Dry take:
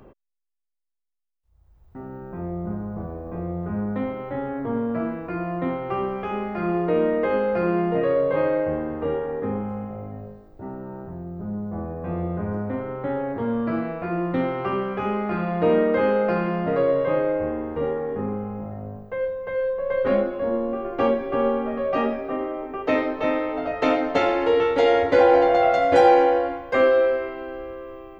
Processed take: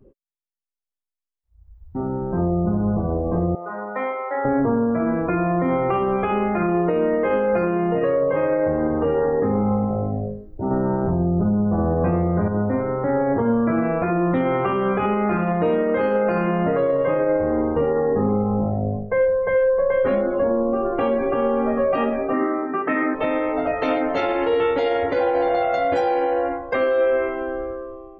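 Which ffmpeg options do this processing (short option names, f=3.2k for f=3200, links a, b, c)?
-filter_complex "[0:a]asettb=1/sr,asplit=3[a][b][c];[a]atrim=end=3.554[d];[b]atrim=start=3.55:end=4.45,asetpts=PTS-STARTPTS,afade=t=in:d=0.004:c=qsin,afade=t=out:st=0.896:d=0.004:c=qsin,highpass=750[e];[c]atrim=start=4.446[f];[d][e]acrossfade=d=0.004:c1=hsin:c2=qsin[g];[g][f]acrossfade=d=0.004:c1=qsin:c2=hsin,asettb=1/sr,asplit=3[h][i][j];[h]atrim=end=22.334[k];[i]atrim=start=22.33:end=23.15,asetpts=PTS-STARTPTS,afade=t=in:d=0.004:c=qsin,afade=t=out:st=0.816:d=0.004:c=qsin,highpass=150,equalizer=f=160:t=q:w=4:g=10,equalizer=f=230:t=q:w=4:g=9,equalizer=f=340:t=q:w=4:g=7,equalizer=f=500:t=q:w=4:g=-8,equalizer=f=1.3k:t=q:w=4:g=8,equalizer=f=1.8k:t=q:w=4:g=10,lowpass=f=2.9k:w=0.5412,lowpass=f=2.9k:w=1.3066[l];[j]atrim=start=23.146[m];[k][l]acrossfade=d=0.004:c1=hsin:c2=qsin[n];[n][m]acrossfade=d=0.004:c1=qsin:c2=hsin,asplit=3[o][p][q];[o]atrim=end=10.712[r];[p]atrim=start=10.708:end=12.482,asetpts=PTS-STARTPTS,volume=9.5dB[s];[q]atrim=start=12.478[t];[r][s]acrossfade=d=0.004:c1=hsin:c2=hsin[u];[u][t]acrossfade=d=0.004:c1=hsin:c2=hsin,afftdn=nr=20:nf=-41,dynaudnorm=f=140:g=9:m=11.5dB,alimiter=limit=-12.5dB:level=0:latency=1:release=111"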